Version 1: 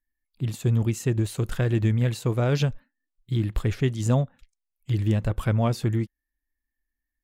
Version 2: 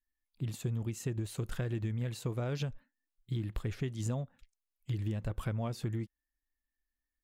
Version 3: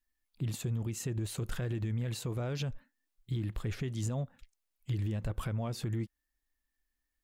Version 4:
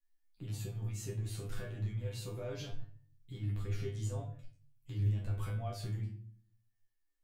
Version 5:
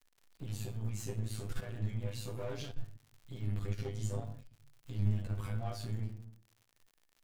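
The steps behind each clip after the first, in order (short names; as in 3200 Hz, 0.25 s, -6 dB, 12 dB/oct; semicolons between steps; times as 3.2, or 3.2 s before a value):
compressor, threshold -25 dBFS, peak gain reduction 9 dB; gain -6 dB
limiter -30.5 dBFS, peak gain reduction 7.5 dB; gain +4.5 dB
resonator 100 Hz, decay 0.25 s, harmonics all, mix 100%; shoebox room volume 49 m³, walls mixed, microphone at 0.56 m; gain +1 dB
half-wave gain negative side -12 dB; crackle 95/s -54 dBFS; gain +3.5 dB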